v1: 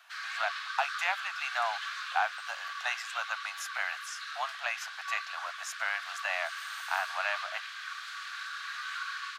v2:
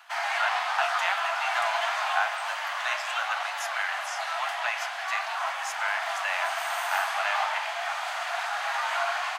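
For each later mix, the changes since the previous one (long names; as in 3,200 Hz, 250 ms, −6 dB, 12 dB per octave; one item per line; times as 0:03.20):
background: remove Chebyshev high-pass with heavy ripple 1,100 Hz, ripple 9 dB
reverb: on, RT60 0.35 s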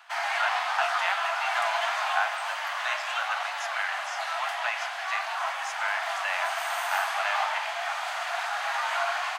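speech: add high-frequency loss of the air 54 metres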